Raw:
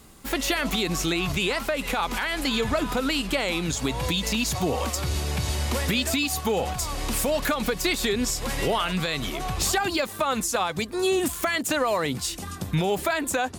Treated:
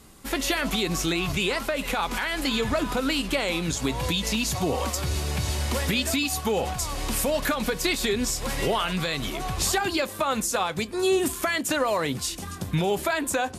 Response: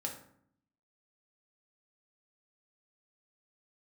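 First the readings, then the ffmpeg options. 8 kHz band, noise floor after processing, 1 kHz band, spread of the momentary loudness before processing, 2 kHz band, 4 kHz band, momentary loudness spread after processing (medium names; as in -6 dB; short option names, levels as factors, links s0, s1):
0.0 dB, -37 dBFS, -0.5 dB, 4 LU, -0.5 dB, -0.5 dB, 4 LU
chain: -filter_complex "[0:a]asplit=2[s0][s1];[1:a]atrim=start_sample=2205,asetrate=83790,aresample=44100[s2];[s1][s2]afir=irnorm=-1:irlink=0,volume=0.376[s3];[s0][s3]amix=inputs=2:normalize=0,volume=0.841" -ar 32000 -c:a libvorbis -b:a 64k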